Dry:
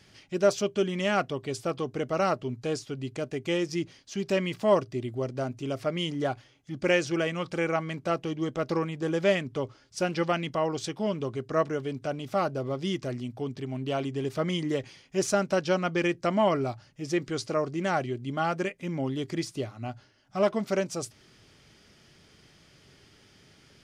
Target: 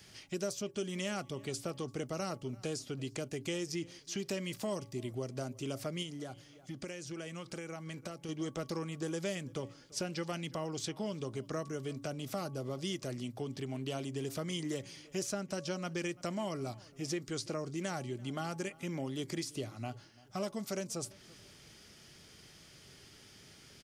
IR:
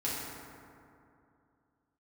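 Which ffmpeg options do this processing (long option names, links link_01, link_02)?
-filter_complex "[0:a]acrossover=split=310|4900[link_01][link_02][link_03];[link_01]acompressor=threshold=-39dB:ratio=4[link_04];[link_02]acompressor=threshold=-39dB:ratio=4[link_05];[link_03]acompressor=threshold=-49dB:ratio=4[link_06];[link_04][link_05][link_06]amix=inputs=3:normalize=0,highshelf=frequency=6000:gain=11.5,asplit=2[link_07][link_08];[link_08]adelay=339,lowpass=frequency=3300:poles=1,volume=-22dB,asplit=2[link_09][link_10];[link_10]adelay=339,lowpass=frequency=3300:poles=1,volume=0.35[link_11];[link_07][link_09][link_11]amix=inputs=3:normalize=0,asettb=1/sr,asplit=3[link_12][link_13][link_14];[link_12]atrim=end=6.024[link_15];[link_13]atrim=start=6.02:end=8.29,asetpts=PTS-STARTPTS,afade=type=in:duration=0.004:curve=qsin,afade=type=out:start_time=2.266:duration=0.004:curve=qsin,acompressor=threshold=-38dB:ratio=6[link_16];[link_14]atrim=start=8.286[link_17];[link_15][link_16]acrossfade=duration=0.004:curve1=hsin:curve2=qsin[link_18];[link_18][link_17]acrossfade=duration=0.004:curve1=qsin:curve2=hsin,bandreject=frequency=281.5:width_type=h:width=4,bandreject=frequency=563:width_type=h:width=4,bandreject=frequency=844.5:width_type=h:width=4,bandreject=frequency=1126:width_type=h:width=4,volume=-1.5dB"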